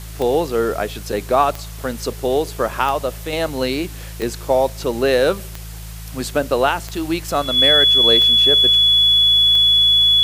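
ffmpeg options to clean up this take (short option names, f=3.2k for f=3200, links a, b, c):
-af "adeclick=t=4,bandreject=f=54.5:t=h:w=4,bandreject=f=109:t=h:w=4,bandreject=f=163.5:t=h:w=4,bandreject=f=3.4k:w=30,afwtdn=0.011"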